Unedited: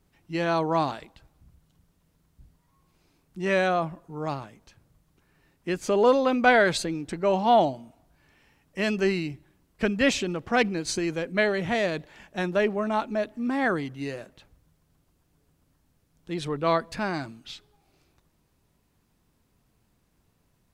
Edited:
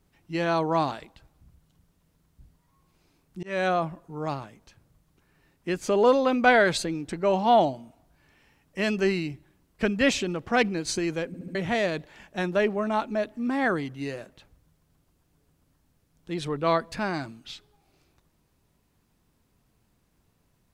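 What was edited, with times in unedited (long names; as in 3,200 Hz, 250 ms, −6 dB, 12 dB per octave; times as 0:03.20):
0:03.43–0:03.68: fade in
0:11.27: stutter in place 0.07 s, 4 plays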